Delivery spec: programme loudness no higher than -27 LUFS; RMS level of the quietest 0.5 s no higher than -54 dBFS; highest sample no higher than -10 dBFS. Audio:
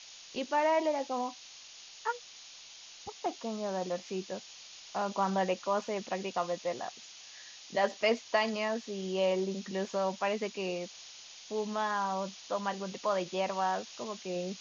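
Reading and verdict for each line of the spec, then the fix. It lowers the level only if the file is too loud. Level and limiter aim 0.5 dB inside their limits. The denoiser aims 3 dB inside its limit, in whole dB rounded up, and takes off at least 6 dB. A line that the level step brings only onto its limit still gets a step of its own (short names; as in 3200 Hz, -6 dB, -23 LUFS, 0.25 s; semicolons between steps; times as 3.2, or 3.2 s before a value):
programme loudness -33.5 LUFS: OK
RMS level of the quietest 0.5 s -51 dBFS: fail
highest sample -15.0 dBFS: OK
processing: denoiser 6 dB, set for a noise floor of -51 dBFS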